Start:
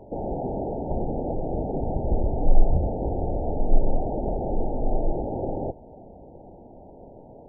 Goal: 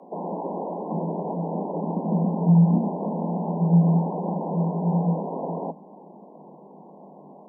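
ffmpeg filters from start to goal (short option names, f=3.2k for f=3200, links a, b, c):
-af "aeval=exprs='val(0)+0.00251*(sin(2*PI*50*n/s)+sin(2*PI*2*50*n/s)/2+sin(2*PI*3*50*n/s)/3+sin(2*PI*4*50*n/s)/4+sin(2*PI*5*50*n/s)/5)':c=same,afreqshift=150,alimiter=level_in=7.5dB:limit=-1dB:release=50:level=0:latency=1,volume=-9dB"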